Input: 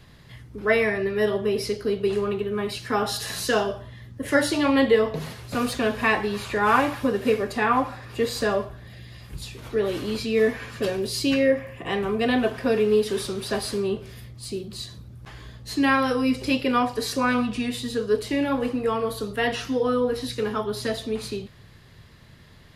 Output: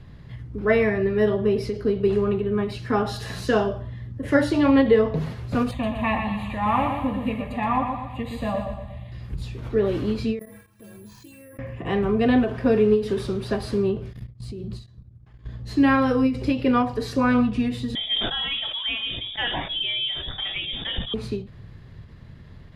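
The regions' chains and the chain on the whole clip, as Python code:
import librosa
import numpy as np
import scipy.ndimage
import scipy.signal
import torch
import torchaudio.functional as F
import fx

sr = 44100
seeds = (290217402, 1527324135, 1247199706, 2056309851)

y = fx.chain(x, sr, fx.fixed_phaser(hz=1500.0, stages=6),
    fx.echo_feedback(ms=121, feedback_pct=46, wet_db=-6.0), at=(5.71, 9.12))
y = fx.chain(y, sr, fx.stiff_resonator(f0_hz=98.0, decay_s=0.35, stiffness=0.03),
    fx.level_steps(step_db=16),
    fx.resample_bad(factor=4, down='none', up='zero_stuff'), at=(10.39, 11.59))
y = fx.chain(y, sr, fx.highpass(hz=73.0, slope=6),
    fx.low_shelf(hz=110.0, db=11.0),
    fx.level_steps(step_db=19), at=(14.13, 15.49))
y = fx.chain(y, sr, fx.freq_invert(carrier_hz=3600),
    fx.sustainer(db_per_s=47.0), at=(17.95, 21.14))
y = fx.lowpass(y, sr, hz=2200.0, slope=6)
y = fx.low_shelf(y, sr, hz=260.0, db=9.5)
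y = fx.end_taper(y, sr, db_per_s=140.0)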